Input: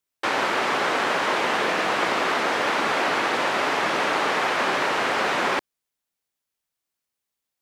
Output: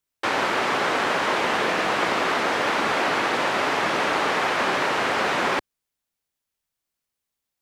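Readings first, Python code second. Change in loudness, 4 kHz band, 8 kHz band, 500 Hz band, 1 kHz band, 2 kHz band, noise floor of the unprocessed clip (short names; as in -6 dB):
0.0 dB, 0.0 dB, 0.0 dB, +0.5 dB, 0.0 dB, 0.0 dB, -84 dBFS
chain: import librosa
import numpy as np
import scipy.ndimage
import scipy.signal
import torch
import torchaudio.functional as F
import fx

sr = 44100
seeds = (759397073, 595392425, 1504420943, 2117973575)

y = fx.low_shelf(x, sr, hz=120.0, db=7.5)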